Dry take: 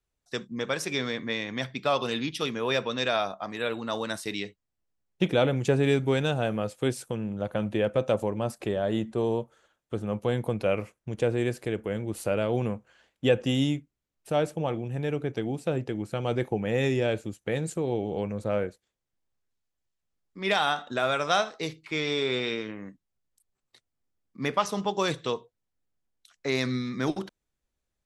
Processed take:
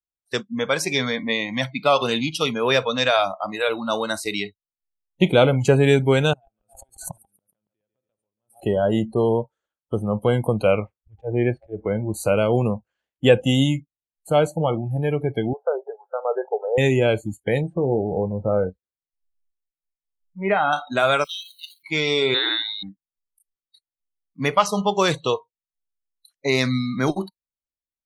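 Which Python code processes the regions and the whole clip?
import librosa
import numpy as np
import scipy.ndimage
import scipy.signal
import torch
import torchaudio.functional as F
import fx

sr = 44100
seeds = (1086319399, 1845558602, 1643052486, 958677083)

y = fx.chain(x, sr, fx.gate_flip(shuts_db=-28.0, range_db=-38),
    fx.echo_feedback(ms=140, feedback_pct=57, wet_db=-12.0),
    fx.pre_swell(db_per_s=88.0), at=(6.33, 8.64))
y = fx.chain(y, sr, fx.lowpass(hz=2600.0, slope=12),
    fx.auto_swell(attack_ms=160.0), at=(10.71, 12.14))
y = fx.chain(y, sr, fx.brickwall_bandpass(low_hz=370.0, high_hz=1700.0),
    fx.air_absorb(metres=290.0), at=(15.53, 16.78))
y = fx.chain(y, sr, fx.lowpass(hz=1500.0, slope=12),
    fx.dynamic_eq(hz=1000.0, q=3.3, threshold_db=-45.0, ratio=4.0, max_db=-5),
    fx.doubler(ms=22.0, db=-12), at=(17.61, 20.73))
y = fx.chain(y, sr, fx.zero_step(step_db=-32.5),
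    fx.level_steps(step_db=9),
    fx.ladder_highpass(hz=2800.0, resonance_pct=60), at=(21.24, 21.83))
y = fx.chain(y, sr, fx.freq_invert(carrier_hz=4000),
    fx.highpass(hz=150.0, slope=24), at=(22.34, 22.83))
y = fx.noise_reduce_blind(y, sr, reduce_db=28)
y = fx.dynamic_eq(y, sr, hz=300.0, q=4.5, threshold_db=-41.0, ratio=4.0, max_db=-4)
y = y * 10.0 ** (8.0 / 20.0)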